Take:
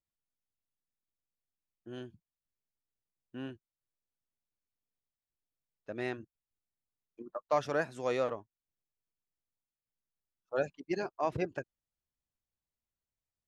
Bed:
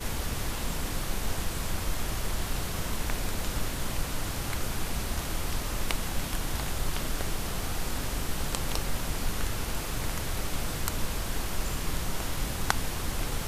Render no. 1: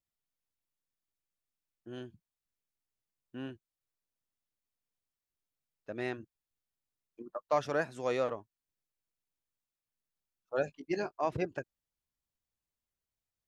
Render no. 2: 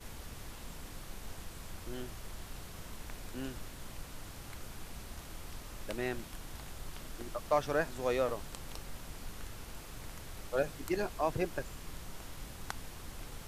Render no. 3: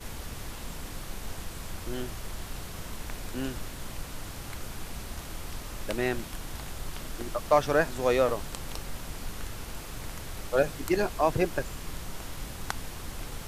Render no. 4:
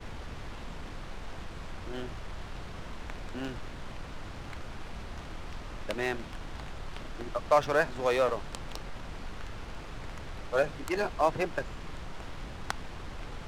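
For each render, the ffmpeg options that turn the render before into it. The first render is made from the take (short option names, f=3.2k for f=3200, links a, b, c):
-filter_complex "[0:a]asettb=1/sr,asplit=3[a][b][c];[a]atrim=end=10.654[d];[b]atrim=start=10.65:end=11.13,asetpts=PTS-STARTPTS,afade=t=in:d=0.004:c=qsin,afade=t=out:st=0.476:d=0.004:c=qsin,asplit=2[e][f];[f]adelay=19,volume=-10dB[g];[e][g]amix=inputs=2:normalize=0,atrim=end_sample=21168[h];[c]atrim=start=11.126[i];[d][h]acrossfade=d=0.004:c1=hsin:c2=qsin[j];[j][i]acrossfade=d=0.004:c1=qsin:c2=hsin"
-filter_complex "[1:a]volume=-14.5dB[a];[0:a][a]amix=inputs=2:normalize=0"
-af "volume=7.5dB"
-filter_complex "[0:a]acrossover=split=490[a][b];[a]asoftclip=type=tanh:threshold=-33.5dB[c];[b]adynamicsmooth=sensitivity=8:basefreq=3k[d];[c][d]amix=inputs=2:normalize=0"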